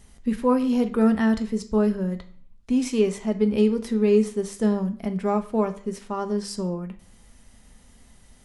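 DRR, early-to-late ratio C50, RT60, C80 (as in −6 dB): 7.0 dB, 13.5 dB, 0.50 s, 18.5 dB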